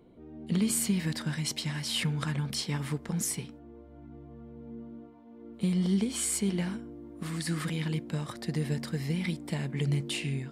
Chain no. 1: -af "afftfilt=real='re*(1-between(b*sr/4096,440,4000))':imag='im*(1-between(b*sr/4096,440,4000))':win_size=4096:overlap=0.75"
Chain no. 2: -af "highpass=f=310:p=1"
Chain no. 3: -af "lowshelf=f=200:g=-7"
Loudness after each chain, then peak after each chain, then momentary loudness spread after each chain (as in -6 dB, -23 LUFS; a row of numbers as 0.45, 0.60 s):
-32.0, -34.5, -33.5 LUFS; -17.5, -17.0, -17.0 dBFS; 21, 23, 22 LU